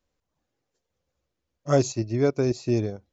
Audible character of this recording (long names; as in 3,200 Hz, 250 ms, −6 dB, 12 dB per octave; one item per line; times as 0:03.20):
background noise floor −82 dBFS
spectral slope −6.0 dB per octave